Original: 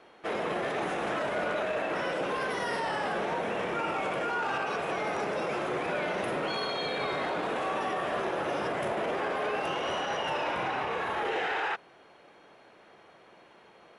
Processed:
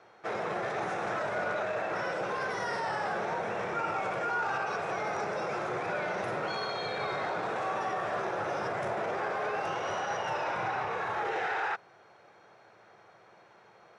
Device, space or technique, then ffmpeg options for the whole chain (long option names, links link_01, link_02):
car door speaker: -af "highpass=81,equalizer=frequency=110:width_type=q:width=4:gain=10,equalizer=frequency=270:width_type=q:width=4:gain=-9,equalizer=frequency=780:width_type=q:width=4:gain=3,equalizer=frequency=1400:width_type=q:width=4:gain=4,equalizer=frequency=3000:width_type=q:width=4:gain=-7,equalizer=frequency=5700:width_type=q:width=4:gain=4,lowpass=frequency=8600:width=0.5412,lowpass=frequency=8600:width=1.3066,volume=-2.5dB"